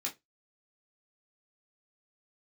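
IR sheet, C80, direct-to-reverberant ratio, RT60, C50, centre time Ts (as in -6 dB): 28.0 dB, -2.5 dB, no single decay rate, 16.0 dB, 15 ms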